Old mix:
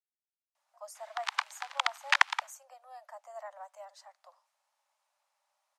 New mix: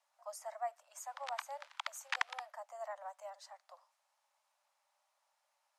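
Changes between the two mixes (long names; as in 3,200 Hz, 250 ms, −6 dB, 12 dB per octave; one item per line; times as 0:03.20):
speech: entry −0.55 s
background −12.0 dB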